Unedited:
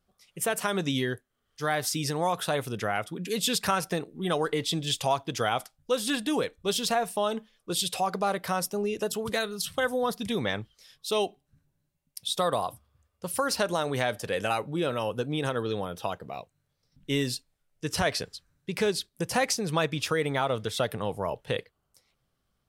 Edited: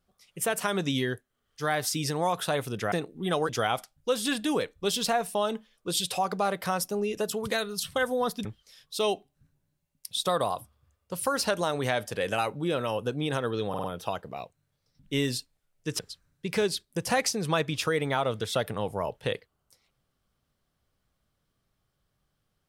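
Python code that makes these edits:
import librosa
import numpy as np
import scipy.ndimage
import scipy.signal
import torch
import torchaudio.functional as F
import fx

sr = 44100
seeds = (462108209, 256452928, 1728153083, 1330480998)

y = fx.edit(x, sr, fx.cut(start_s=2.92, length_s=0.99),
    fx.cut(start_s=4.48, length_s=0.83),
    fx.cut(start_s=10.27, length_s=0.3),
    fx.stutter(start_s=15.81, slice_s=0.05, count=4),
    fx.cut(start_s=17.96, length_s=0.27), tone=tone)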